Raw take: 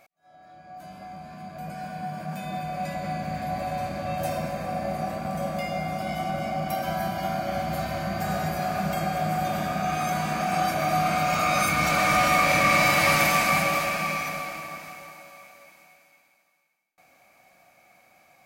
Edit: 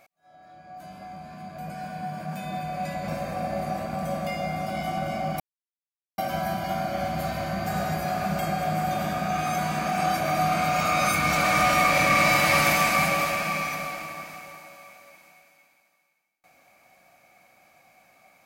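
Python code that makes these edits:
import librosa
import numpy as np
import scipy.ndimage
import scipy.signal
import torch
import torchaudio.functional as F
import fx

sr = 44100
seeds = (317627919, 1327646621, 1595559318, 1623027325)

y = fx.edit(x, sr, fx.cut(start_s=3.08, length_s=1.32),
    fx.insert_silence(at_s=6.72, length_s=0.78), tone=tone)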